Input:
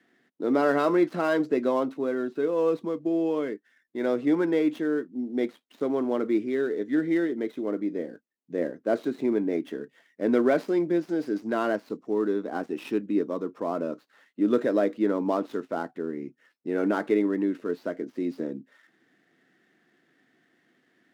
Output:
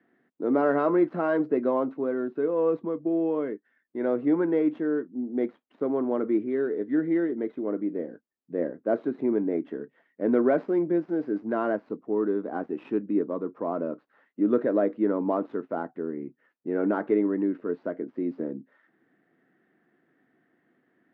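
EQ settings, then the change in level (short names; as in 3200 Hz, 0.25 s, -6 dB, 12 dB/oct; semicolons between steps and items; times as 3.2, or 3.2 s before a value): LPF 1500 Hz 12 dB/oct; 0.0 dB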